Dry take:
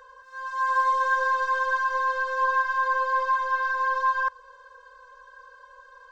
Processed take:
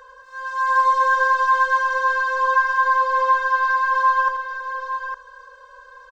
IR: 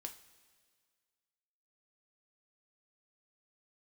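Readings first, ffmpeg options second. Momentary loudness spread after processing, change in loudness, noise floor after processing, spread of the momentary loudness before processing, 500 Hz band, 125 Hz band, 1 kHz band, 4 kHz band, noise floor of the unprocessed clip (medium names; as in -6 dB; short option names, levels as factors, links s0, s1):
11 LU, +5.5 dB, -46 dBFS, 6 LU, +4.5 dB, no reading, +6.5 dB, +5.5 dB, -52 dBFS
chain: -af "aecho=1:1:82|101|859:0.316|0.119|0.398,volume=1.68"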